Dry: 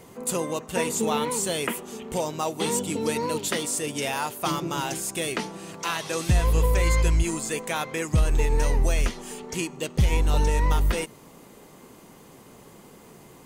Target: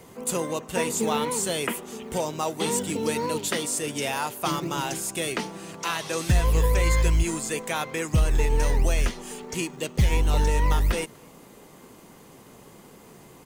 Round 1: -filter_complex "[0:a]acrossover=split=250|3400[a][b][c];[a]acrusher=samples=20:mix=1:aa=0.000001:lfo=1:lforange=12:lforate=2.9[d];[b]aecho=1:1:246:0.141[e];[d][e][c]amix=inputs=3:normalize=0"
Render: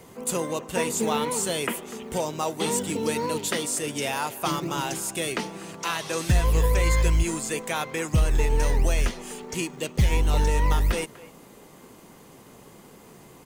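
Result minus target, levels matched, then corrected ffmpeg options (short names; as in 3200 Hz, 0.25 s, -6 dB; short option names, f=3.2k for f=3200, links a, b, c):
echo-to-direct +5.5 dB
-filter_complex "[0:a]acrossover=split=250|3400[a][b][c];[a]acrusher=samples=20:mix=1:aa=0.000001:lfo=1:lforange=12:lforate=2.9[d];[b]aecho=1:1:246:0.0422[e];[d][e][c]amix=inputs=3:normalize=0"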